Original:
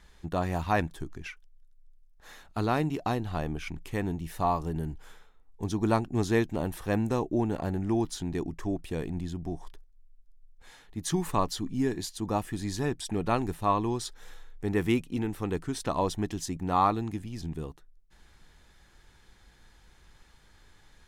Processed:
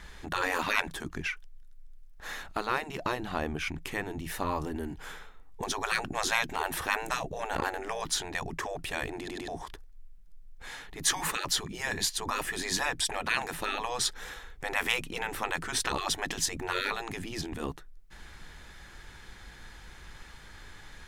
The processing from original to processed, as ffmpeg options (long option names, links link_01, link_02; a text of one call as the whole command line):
ffmpeg -i in.wav -filter_complex "[0:a]asettb=1/sr,asplit=3[link_01][link_02][link_03];[link_01]atrim=end=1.214[link_04];[link_02]atrim=start=1.21:end=4.92,asetpts=PTS-STARTPTS,afade=type=in:duration=0.004:curve=qsin,afade=type=out:start_time=3.706:duration=0.004:curve=qsin,acompressor=threshold=-45dB:ratio=1.5:attack=3.2:release=140:knee=1:detection=peak[link_05];[link_03]atrim=start=4.916[link_06];[link_04][link_05]acrossfade=duration=0.004:curve1=hsin:curve2=qsin[link_07];[link_07][link_06]acrossfade=duration=0.004:curve1=qsin:curve2=hsin,asplit=4[link_08][link_09][link_10][link_11];[link_08]atrim=end=9.282[link_12];[link_09]atrim=start=9.178:end=9.282[link_13];[link_10]atrim=start=9.178:end=9.282[link_14];[link_11]atrim=start=9.478[link_15];[link_12][link_13]acrossfade=duration=0.004:curve1=hsin:curve2=hsin[link_16];[link_16][link_14]acrossfade=duration=0.004:curve1=hsin:curve2=hsin[link_17];[link_17][link_15]acrossfade=duration=0.004:curve1=hsin:curve2=hsin,afftfilt=real='re*lt(hypot(re,im),0.0708)':imag='im*lt(hypot(re,im),0.0708)':win_size=1024:overlap=0.75,equalizer=frequency=1800:width_type=o:width=1.5:gain=4.5,volume=8.5dB" out.wav